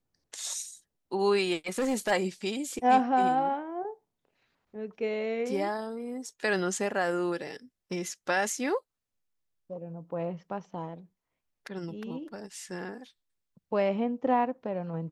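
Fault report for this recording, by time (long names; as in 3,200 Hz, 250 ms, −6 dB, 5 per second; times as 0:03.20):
0:01.67–0:02.12: clipping −24 dBFS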